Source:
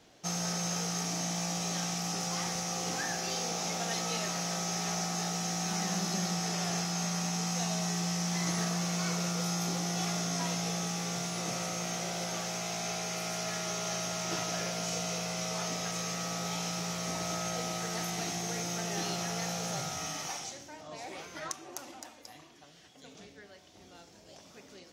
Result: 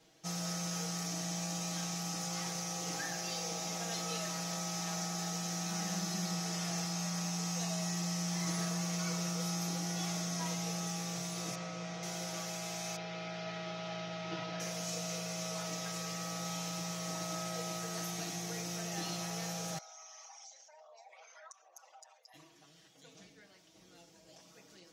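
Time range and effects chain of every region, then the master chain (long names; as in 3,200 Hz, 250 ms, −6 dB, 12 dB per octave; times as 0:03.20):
0:11.55–0:12.03: high-frequency loss of the air 140 metres + mains-hum notches 50/100/150/200/250/300/350/400 Hz
0:12.96–0:14.60: low-pass filter 4,100 Hz 24 dB per octave + notch filter 1,100 Hz, Q 20
0:19.78–0:22.34: spectral envelope exaggerated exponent 2 + inverse Chebyshev high-pass filter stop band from 330 Hz + downward compressor 3 to 1, threshold −48 dBFS
whole clip: high-shelf EQ 6,100 Hz +5 dB; comb filter 6.2 ms, depth 90%; level −8.5 dB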